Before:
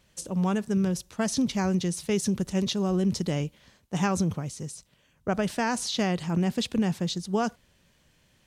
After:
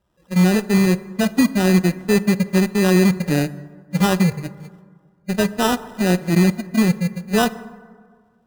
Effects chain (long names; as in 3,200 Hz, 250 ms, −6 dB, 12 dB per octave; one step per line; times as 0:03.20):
harmonic-percussive split with one part muted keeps harmonic
parametric band 310 Hz +7.5 dB 0.28 octaves
decimation without filtering 20×
harmonic generator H 7 −19 dB, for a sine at −16.5 dBFS
on a send: convolution reverb RT60 1.8 s, pre-delay 8 ms, DRR 14 dB
on the sum: level +9 dB